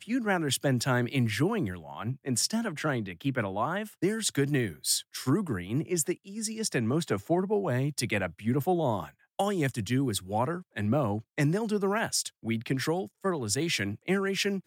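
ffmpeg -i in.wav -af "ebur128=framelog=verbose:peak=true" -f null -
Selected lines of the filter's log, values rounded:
Integrated loudness:
  I:         -29.5 LUFS
  Threshold: -39.5 LUFS
Loudness range:
  LRA:         0.8 LU
  Threshold: -49.6 LUFS
  LRA low:   -30.1 LUFS
  LRA high:  -29.2 LUFS
True peak:
  Peak:      -13.7 dBFS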